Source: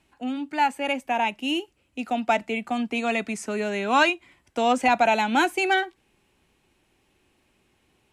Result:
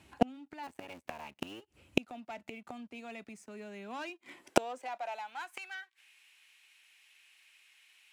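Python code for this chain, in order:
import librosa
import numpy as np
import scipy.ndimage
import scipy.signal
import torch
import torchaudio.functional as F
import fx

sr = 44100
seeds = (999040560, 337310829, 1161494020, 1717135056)

y = fx.cycle_switch(x, sr, every=3, mode='muted', at=(0.62, 1.6), fade=0.02)
y = fx.leveller(y, sr, passes=2)
y = fx.filter_sweep_highpass(y, sr, from_hz=74.0, to_hz=2200.0, start_s=3.16, end_s=6.11, q=1.6)
y = fx.gate_flip(y, sr, shuts_db=-19.0, range_db=-36)
y = y * 10.0 ** (8.5 / 20.0)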